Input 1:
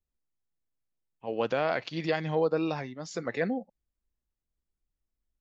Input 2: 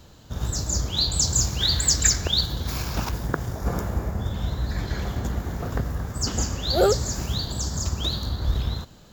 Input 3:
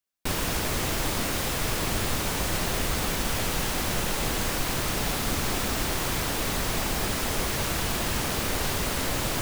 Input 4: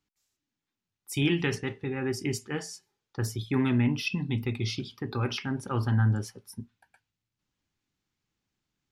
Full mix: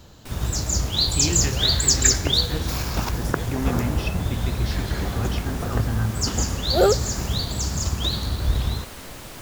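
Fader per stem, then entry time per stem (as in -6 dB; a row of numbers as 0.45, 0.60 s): -11.5, +2.0, -11.0, -2.0 dB; 0.00, 0.00, 0.00, 0.00 s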